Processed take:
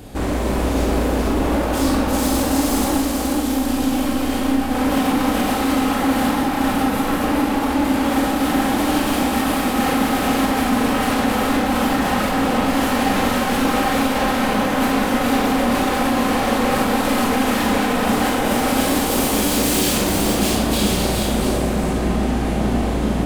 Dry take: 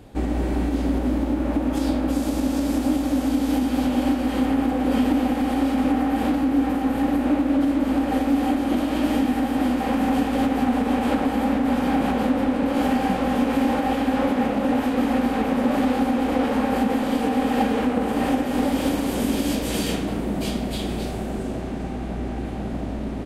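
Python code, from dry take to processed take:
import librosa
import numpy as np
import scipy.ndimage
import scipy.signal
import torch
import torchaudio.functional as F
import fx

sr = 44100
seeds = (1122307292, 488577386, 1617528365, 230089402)

p1 = fx.high_shelf(x, sr, hz=4700.0, db=9.0)
p2 = fx.over_compress(p1, sr, threshold_db=-25.0, ratio=-1.0)
p3 = p1 + (p2 * librosa.db_to_amplitude(-2.5))
p4 = fx.tube_stage(p3, sr, drive_db=10.0, bias=0.75, at=(2.97, 4.75))
p5 = 10.0 ** (-17.0 / 20.0) * (np.abs((p4 / 10.0 ** (-17.0 / 20.0) + 3.0) % 4.0 - 2.0) - 1.0)
p6 = p5 + 10.0 ** (-4.0 / 20.0) * np.pad(p5, (int(425 * sr / 1000.0), 0))[:len(p5)]
y = fx.rev_schroeder(p6, sr, rt60_s=0.46, comb_ms=30, drr_db=1.5)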